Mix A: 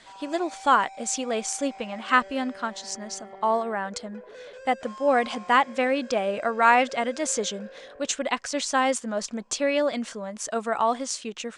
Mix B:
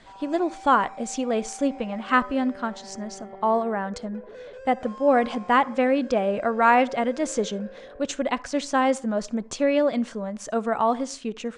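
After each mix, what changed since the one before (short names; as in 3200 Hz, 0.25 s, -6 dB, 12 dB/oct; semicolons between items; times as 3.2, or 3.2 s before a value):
speech: send on; master: add tilt -2.5 dB/oct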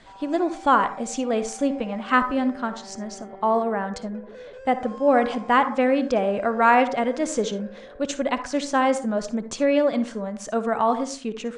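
speech: send +11.5 dB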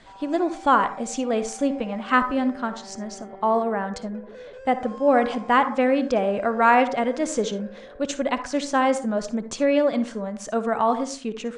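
none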